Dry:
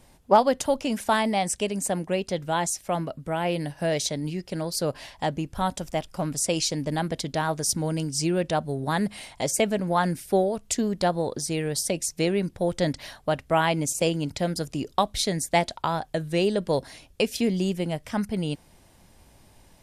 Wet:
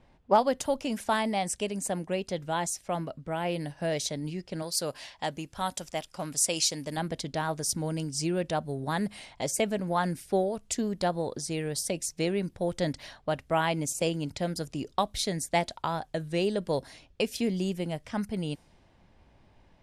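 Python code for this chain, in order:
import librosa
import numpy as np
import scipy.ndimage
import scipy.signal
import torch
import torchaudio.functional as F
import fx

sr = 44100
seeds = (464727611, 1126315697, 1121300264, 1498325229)

y = fx.env_lowpass(x, sr, base_hz=2800.0, full_db=-24.0)
y = fx.tilt_eq(y, sr, slope=2.0, at=(4.62, 6.97))
y = y * librosa.db_to_amplitude(-4.5)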